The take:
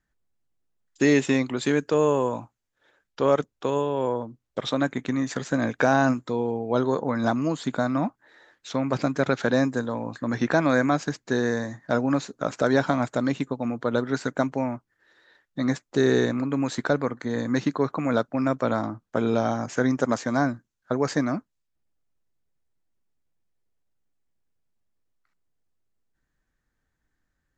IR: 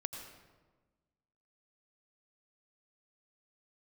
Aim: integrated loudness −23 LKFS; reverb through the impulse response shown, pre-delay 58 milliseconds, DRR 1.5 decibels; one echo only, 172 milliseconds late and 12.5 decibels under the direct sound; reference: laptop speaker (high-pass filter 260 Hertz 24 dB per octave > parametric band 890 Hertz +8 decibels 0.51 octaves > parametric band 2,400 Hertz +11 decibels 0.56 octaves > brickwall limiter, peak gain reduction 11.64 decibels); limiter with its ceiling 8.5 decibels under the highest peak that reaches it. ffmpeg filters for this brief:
-filter_complex "[0:a]alimiter=limit=-15.5dB:level=0:latency=1,aecho=1:1:172:0.237,asplit=2[link_01][link_02];[1:a]atrim=start_sample=2205,adelay=58[link_03];[link_02][link_03]afir=irnorm=-1:irlink=0,volume=-1dB[link_04];[link_01][link_04]amix=inputs=2:normalize=0,highpass=frequency=260:width=0.5412,highpass=frequency=260:width=1.3066,equalizer=frequency=890:width_type=o:width=0.51:gain=8,equalizer=frequency=2400:width_type=o:width=0.56:gain=11,volume=7dB,alimiter=limit=-13.5dB:level=0:latency=1"

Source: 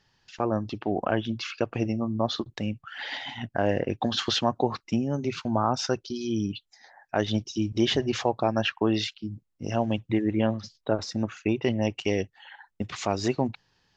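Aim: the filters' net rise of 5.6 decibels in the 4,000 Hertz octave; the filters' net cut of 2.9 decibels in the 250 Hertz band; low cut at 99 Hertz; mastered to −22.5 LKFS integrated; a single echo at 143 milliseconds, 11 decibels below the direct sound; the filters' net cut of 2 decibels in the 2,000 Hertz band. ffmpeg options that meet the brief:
ffmpeg -i in.wav -af "highpass=99,equalizer=frequency=250:width_type=o:gain=-3.5,equalizer=frequency=2000:width_type=o:gain=-6,equalizer=frequency=4000:width_type=o:gain=9,aecho=1:1:143:0.282,volume=5.5dB" out.wav

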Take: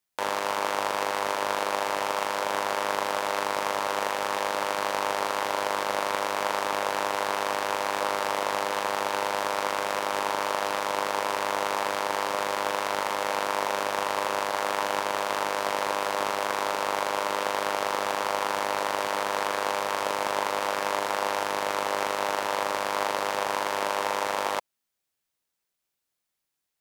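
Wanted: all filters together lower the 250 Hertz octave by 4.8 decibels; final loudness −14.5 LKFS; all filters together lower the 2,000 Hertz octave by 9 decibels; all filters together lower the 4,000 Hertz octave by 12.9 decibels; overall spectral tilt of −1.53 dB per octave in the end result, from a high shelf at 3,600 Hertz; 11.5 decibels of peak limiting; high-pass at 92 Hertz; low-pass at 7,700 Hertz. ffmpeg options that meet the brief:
ffmpeg -i in.wav -af "highpass=92,lowpass=7700,equalizer=frequency=250:width_type=o:gain=-6.5,equalizer=frequency=2000:width_type=o:gain=-8,highshelf=frequency=3600:gain=-7.5,equalizer=frequency=4000:width_type=o:gain=-9,volume=23.5dB,alimiter=limit=-1.5dB:level=0:latency=1" out.wav

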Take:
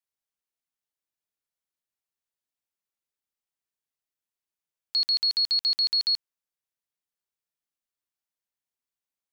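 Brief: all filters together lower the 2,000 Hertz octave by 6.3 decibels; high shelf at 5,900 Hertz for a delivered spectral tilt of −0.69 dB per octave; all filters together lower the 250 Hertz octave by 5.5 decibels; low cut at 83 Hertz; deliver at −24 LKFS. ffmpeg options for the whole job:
ffmpeg -i in.wav -af "highpass=83,equalizer=frequency=250:width_type=o:gain=-7.5,equalizer=frequency=2000:width_type=o:gain=-7.5,highshelf=frequency=5900:gain=-5.5,volume=2dB" out.wav

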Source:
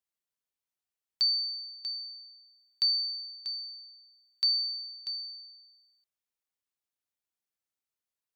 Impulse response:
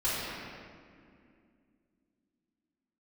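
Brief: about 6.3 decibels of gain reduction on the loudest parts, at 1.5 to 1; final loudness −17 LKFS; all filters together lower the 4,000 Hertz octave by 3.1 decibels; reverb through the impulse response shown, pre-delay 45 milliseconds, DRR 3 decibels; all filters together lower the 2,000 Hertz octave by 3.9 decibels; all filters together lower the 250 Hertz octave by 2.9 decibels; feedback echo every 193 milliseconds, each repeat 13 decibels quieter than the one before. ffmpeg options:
-filter_complex "[0:a]equalizer=frequency=250:width_type=o:gain=-4,equalizer=frequency=2000:width_type=o:gain=-4,equalizer=frequency=4000:width_type=o:gain=-3,acompressor=threshold=-44dB:ratio=1.5,aecho=1:1:193|386|579:0.224|0.0493|0.0108,asplit=2[link_01][link_02];[1:a]atrim=start_sample=2205,adelay=45[link_03];[link_02][link_03]afir=irnorm=-1:irlink=0,volume=-13dB[link_04];[link_01][link_04]amix=inputs=2:normalize=0,volume=19dB"

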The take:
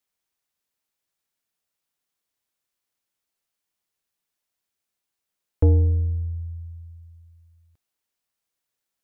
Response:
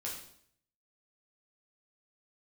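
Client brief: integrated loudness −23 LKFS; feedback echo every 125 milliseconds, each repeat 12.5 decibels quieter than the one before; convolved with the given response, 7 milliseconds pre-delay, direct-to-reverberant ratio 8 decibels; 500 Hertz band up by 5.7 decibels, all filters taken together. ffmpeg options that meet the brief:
-filter_complex "[0:a]equalizer=frequency=500:width_type=o:gain=6,aecho=1:1:125|250|375:0.237|0.0569|0.0137,asplit=2[link_01][link_02];[1:a]atrim=start_sample=2205,adelay=7[link_03];[link_02][link_03]afir=irnorm=-1:irlink=0,volume=-8dB[link_04];[link_01][link_04]amix=inputs=2:normalize=0,volume=-2dB"

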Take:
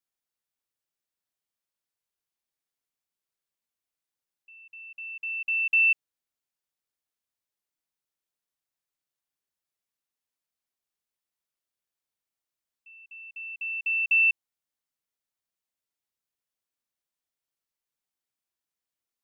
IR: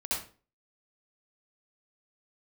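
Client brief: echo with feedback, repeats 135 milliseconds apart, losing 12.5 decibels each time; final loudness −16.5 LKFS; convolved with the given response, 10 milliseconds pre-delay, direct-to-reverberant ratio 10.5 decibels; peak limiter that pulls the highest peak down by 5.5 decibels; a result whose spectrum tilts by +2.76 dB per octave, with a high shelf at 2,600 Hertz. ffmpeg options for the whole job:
-filter_complex "[0:a]highshelf=frequency=2600:gain=8,alimiter=limit=-18.5dB:level=0:latency=1,aecho=1:1:135|270|405:0.237|0.0569|0.0137,asplit=2[link_01][link_02];[1:a]atrim=start_sample=2205,adelay=10[link_03];[link_02][link_03]afir=irnorm=-1:irlink=0,volume=-16dB[link_04];[link_01][link_04]amix=inputs=2:normalize=0,volume=9dB"

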